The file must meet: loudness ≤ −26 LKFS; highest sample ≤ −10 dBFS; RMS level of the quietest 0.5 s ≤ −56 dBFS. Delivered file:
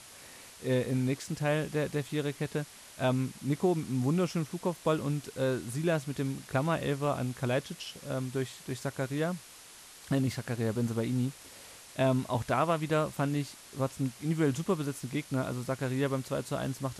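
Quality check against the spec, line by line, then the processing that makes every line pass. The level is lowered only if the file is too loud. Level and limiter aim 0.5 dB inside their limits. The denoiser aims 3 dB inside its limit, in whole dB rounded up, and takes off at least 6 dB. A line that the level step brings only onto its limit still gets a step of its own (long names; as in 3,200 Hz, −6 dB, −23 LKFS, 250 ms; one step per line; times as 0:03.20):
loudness −32.0 LKFS: in spec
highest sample −15.0 dBFS: in spec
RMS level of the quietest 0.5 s −52 dBFS: out of spec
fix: broadband denoise 7 dB, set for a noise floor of −52 dBFS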